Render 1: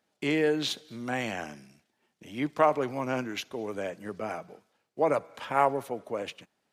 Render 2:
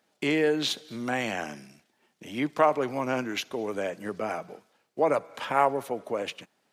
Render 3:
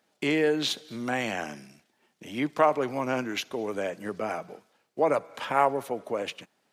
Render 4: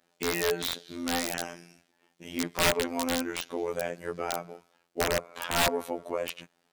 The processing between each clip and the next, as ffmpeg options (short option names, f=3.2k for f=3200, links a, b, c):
-filter_complex "[0:a]highpass=f=140:p=1,asplit=2[a][b];[b]acompressor=threshold=-35dB:ratio=6,volume=-1dB[c];[a][c]amix=inputs=2:normalize=0"
-af anull
-af "afftfilt=real='hypot(re,im)*cos(PI*b)':imag='0':win_size=2048:overlap=0.75,aeval=exprs='(mod(7.94*val(0)+1,2)-1)/7.94':c=same,volume=2.5dB"